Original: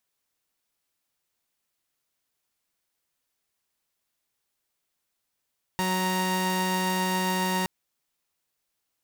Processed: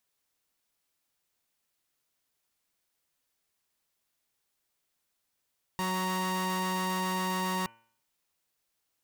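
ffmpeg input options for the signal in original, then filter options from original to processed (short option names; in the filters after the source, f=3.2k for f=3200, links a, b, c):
-f lavfi -i "aevalsrc='0.0596*((2*mod(185*t,1)-1)+(2*mod(932.33*t,1)-1))':d=1.87:s=44100"
-af "asoftclip=type=hard:threshold=-29dB,bandreject=f=114.6:t=h:w=4,bandreject=f=229.2:t=h:w=4,bandreject=f=343.8:t=h:w=4,bandreject=f=458.4:t=h:w=4,bandreject=f=573:t=h:w=4,bandreject=f=687.6:t=h:w=4,bandreject=f=802.2:t=h:w=4,bandreject=f=916.8:t=h:w=4,bandreject=f=1.0314k:t=h:w=4,bandreject=f=1.146k:t=h:w=4,bandreject=f=1.2606k:t=h:w=4,bandreject=f=1.3752k:t=h:w=4,bandreject=f=1.4898k:t=h:w=4,bandreject=f=1.6044k:t=h:w=4,bandreject=f=1.719k:t=h:w=4,bandreject=f=1.8336k:t=h:w=4,bandreject=f=1.9482k:t=h:w=4,bandreject=f=2.0628k:t=h:w=4,bandreject=f=2.1774k:t=h:w=4,bandreject=f=2.292k:t=h:w=4,bandreject=f=2.4066k:t=h:w=4,bandreject=f=2.5212k:t=h:w=4,bandreject=f=2.6358k:t=h:w=4,bandreject=f=2.7504k:t=h:w=4,bandreject=f=2.865k:t=h:w=4,bandreject=f=2.9796k:t=h:w=4,bandreject=f=3.0942k:t=h:w=4"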